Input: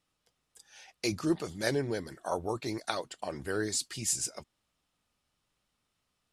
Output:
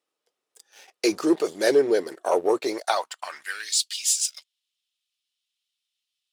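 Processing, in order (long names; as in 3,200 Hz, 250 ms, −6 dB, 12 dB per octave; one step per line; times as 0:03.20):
leveller curve on the samples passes 2
high-pass filter sweep 410 Hz → 3,300 Hz, 0:02.63–0:03.77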